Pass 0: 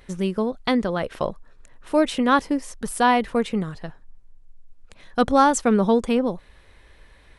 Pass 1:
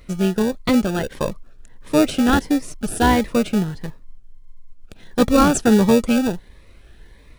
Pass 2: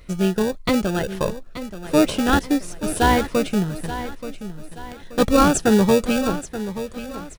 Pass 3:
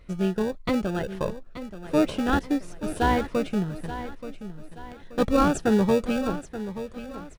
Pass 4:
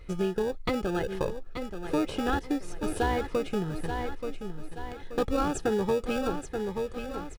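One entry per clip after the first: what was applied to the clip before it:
in parallel at −4 dB: decimation without filtering 42×; on the sum: phaser whose notches keep moving one way rising 1.5 Hz; level +2 dB
parametric band 240 Hz −5.5 dB 0.28 octaves; repeating echo 879 ms, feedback 40%, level −12.5 dB
high-shelf EQ 4,300 Hz −10.5 dB; level −5 dB
comb filter 2.4 ms, depth 44%; downward compressor 3 to 1, threshold −28 dBFS, peak gain reduction 10 dB; level +2 dB

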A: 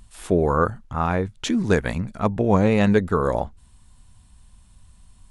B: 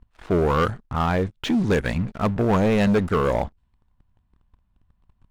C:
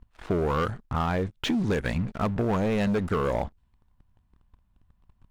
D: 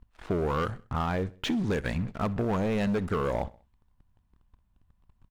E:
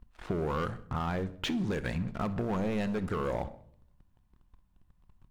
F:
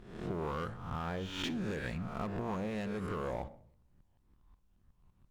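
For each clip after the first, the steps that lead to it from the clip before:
low-pass that shuts in the quiet parts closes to 1,800 Hz, open at −14.5 dBFS; leveller curve on the samples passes 3; level −8.5 dB
downward compressor, threshold −23 dBFS, peak gain reduction 7 dB
repeating echo 64 ms, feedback 48%, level −22 dB; level −2.5 dB
downward compressor, threshold −29 dBFS, peak gain reduction 5 dB; on a send at −13 dB: convolution reverb RT60 0.65 s, pre-delay 6 ms
peak hold with a rise ahead of every peak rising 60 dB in 0.78 s; level −7 dB; Opus 48 kbit/s 48,000 Hz

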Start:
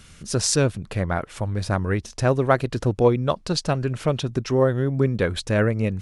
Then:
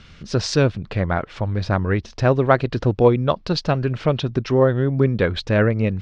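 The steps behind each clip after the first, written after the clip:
low-pass filter 4,800 Hz 24 dB per octave
level +3 dB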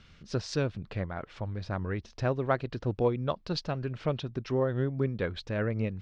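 amplitude modulation by smooth noise, depth 65%
level −8.5 dB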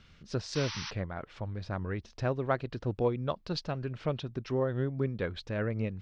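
sound drawn into the spectrogram noise, 0:00.55–0:00.91, 830–6,100 Hz −38 dBFS
level −2 dB

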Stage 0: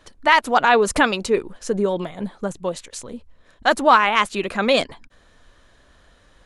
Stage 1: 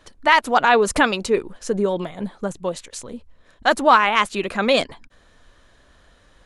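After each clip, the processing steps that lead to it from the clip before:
no processing that can be heard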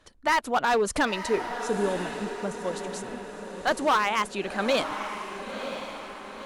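gain into a clipping stage and back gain 11 dB
feedback delay with all-pass diffusion 988 ms, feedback 50%, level −8.5 dB
harmonic generator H 2 −27 dB, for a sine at −7 dBFS
level −6.5 dB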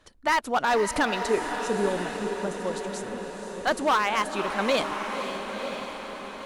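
feedback delay with all-pass diffusion 518 ms, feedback 44%, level −9 dB

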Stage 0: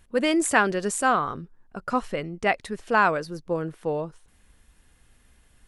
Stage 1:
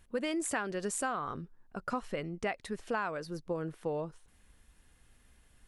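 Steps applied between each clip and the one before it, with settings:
downward compressor 6 to 1, threshold −26 dBFS, peak gain reduction 11.5 dB
level −4.5 dB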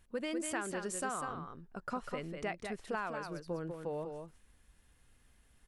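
single-tap delay 197 ms −6 dB
level −4 dB

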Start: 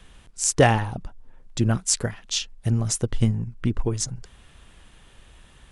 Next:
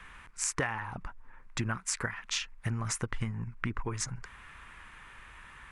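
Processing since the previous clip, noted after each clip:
flat-topped bell 1,500 Hz +14.5 dB
downward compressor 16 to 1, threshold −23 dBFS, peak gain reduction 19.5 dB
level −5.5 dB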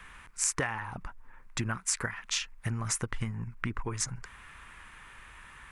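high-shelf EQ 8,200 Hz +8 dB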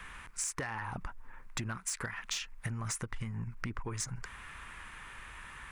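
soft clipping −23.5 dBFS, distortion −16 dB
downward compressor 10 to 1, threshold −36 dBFS, peak gain reduction 8.5 dB
level +2.5 dB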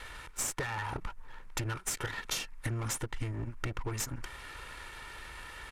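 lower of the sound and its delayed copy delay 2.2 ms
downsampling to 32,000 Hz
level +3.5 dB

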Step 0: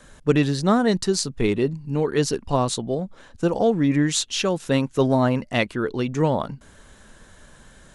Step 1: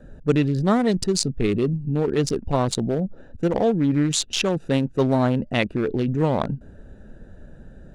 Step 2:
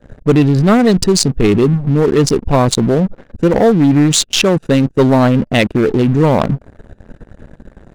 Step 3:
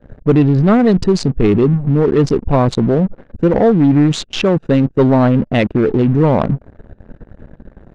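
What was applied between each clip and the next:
adaptive Wiener filter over 41 samples; in parallel at −2 dB: compressor whose output falls as the input rises −30 dBFS, ratio −1; on the sum: level −1 dB
leveller curve on the samples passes 3
head-to-tape spacing loss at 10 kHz 23 dB

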